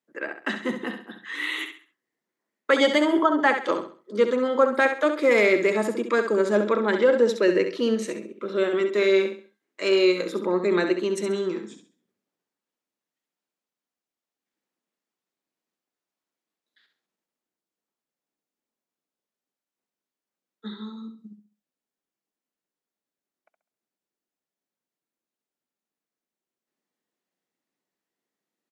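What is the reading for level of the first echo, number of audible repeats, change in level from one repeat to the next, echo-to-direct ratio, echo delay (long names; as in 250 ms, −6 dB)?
−8.0 dB, 3, −10.0 dB, −7.5 dB, 67 ms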